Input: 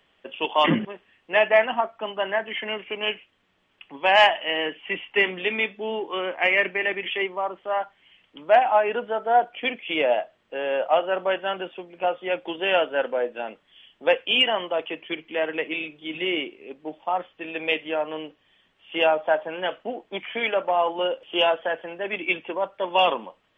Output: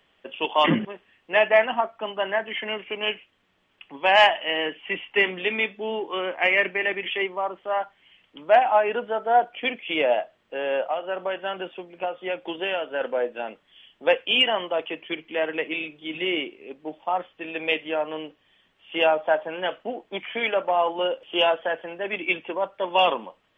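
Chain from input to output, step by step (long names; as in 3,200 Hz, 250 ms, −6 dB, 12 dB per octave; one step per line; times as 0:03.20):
0:10.80–0:13.01: downward compressor 6 to 1, threshold −24 dBFS, peak gain reduction 9.5 dB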